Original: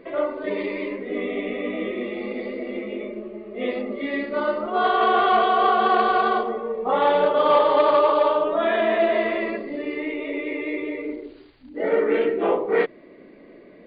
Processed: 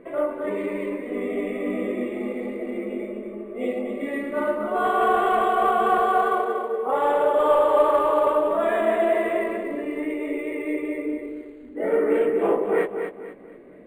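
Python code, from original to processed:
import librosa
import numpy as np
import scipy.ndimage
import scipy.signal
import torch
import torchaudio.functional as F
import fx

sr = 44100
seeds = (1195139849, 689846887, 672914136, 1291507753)

y = fx.spec_repair(x, sr, seeds[0], start_s=2.94, length_s=0.99, low_hz=940.0, high_hz=1900.0, source='both')
y = fx.highpass(y, sr, hz=280.0, slope=24, at=(5.98, 8.27))
y = 10.0 ** (-9.0 / 20.0) * np.tanh(y / 10.0 ** (-9.0 / 20.0))
y = fx.air_absorb(y, sr, metres=360.0)
y = fx.doubler(y, sr, ms=20.0, db=-12)
y = fx.echo_feedback(y, sr, ms=238, feedback_pct=33, wet_db=-7)
y = np.interp(np.arange(len(y)), np.arange(len(y))[::4], y[::4])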